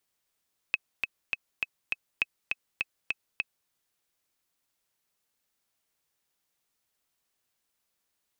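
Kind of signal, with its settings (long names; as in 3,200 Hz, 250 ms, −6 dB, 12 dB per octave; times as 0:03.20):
click track 203 BPM, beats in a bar 5, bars 2, 2,570 Hz, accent 3.5 dB −11.5 dBFS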